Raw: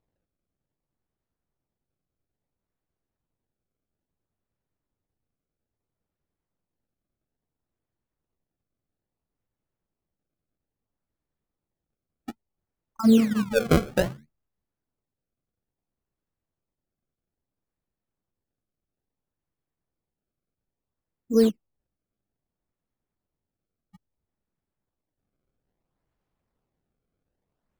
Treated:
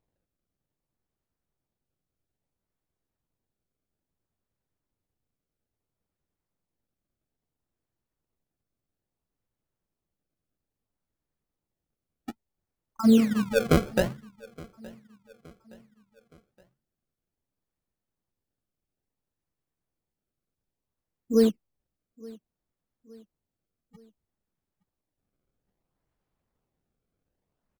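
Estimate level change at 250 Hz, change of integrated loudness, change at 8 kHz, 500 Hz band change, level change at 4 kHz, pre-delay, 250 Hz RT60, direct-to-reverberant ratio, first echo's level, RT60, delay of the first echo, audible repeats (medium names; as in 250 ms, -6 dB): -1.0 dB, -1.0 dB, -1.0 dB, -1.0 dB, -1.0 dB, no reverb, no reverb, no reverb, -23.0 dB, no reverb, 869 ms, 2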